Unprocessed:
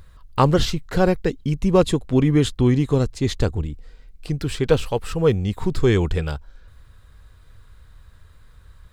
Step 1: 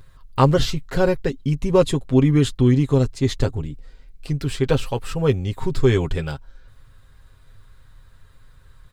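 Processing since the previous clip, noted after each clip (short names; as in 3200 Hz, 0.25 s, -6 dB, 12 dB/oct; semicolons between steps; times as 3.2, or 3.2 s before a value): comb 7.5 ms, depth 54%; gain -1.5 dB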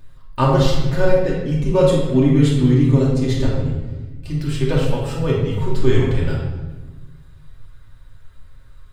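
reverb RT60 1.2 s, pre-delay 3 ms, DRR -4.5 dB; gain -5 dB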